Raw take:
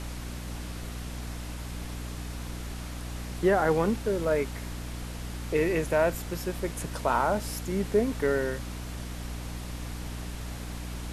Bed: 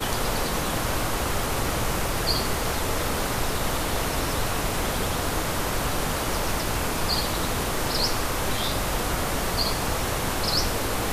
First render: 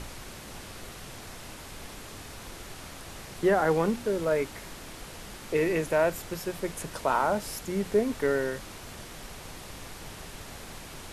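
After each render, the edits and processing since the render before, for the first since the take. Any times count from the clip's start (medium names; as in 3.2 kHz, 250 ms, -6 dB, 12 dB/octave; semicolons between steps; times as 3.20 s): hum notches 60/120/180/240/300 Hz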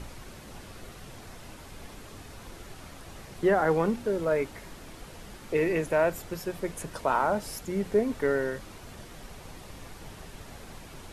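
noise reduction 6 dB, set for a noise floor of -44 dBFS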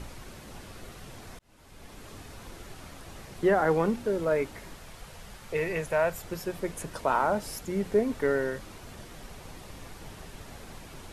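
1.39–2.09 s: fade in; 4.76–6.24 s: peaking EQ 300 Hz -11.5 dB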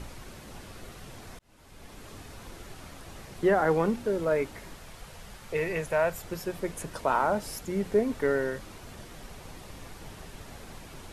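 no audible change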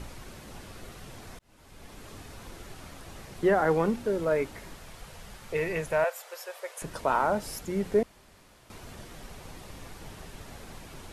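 6.04–6.82 s: elliptic high-pass 510 Hz, stop band 60 dB; 8.03–8.70 s: room tone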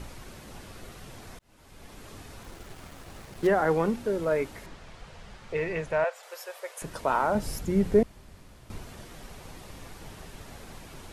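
2.43–3.47 s: dead-time distortion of 0.13 ms; 4.66–6.23 s: distance through air 83 m; 7.35–8.83 s: bass shelf 240 Hz +11.5 dB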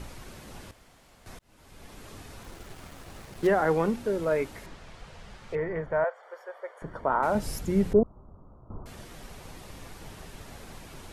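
0.71–1.26 s: room tone; 5.55–7.23 s: Savitzky-Golay filter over 41 samples; 7.93–8.86 s: steep low-pass 1.3 kHz 72 dB/octave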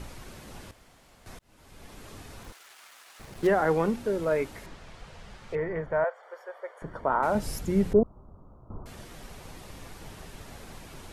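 2.52–3.20 s: high-pass 1.2 kHz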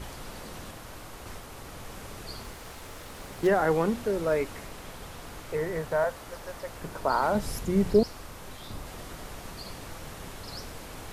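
add bed -18 dB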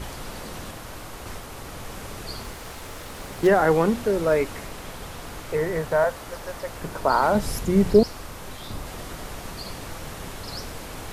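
trim +5.5 dB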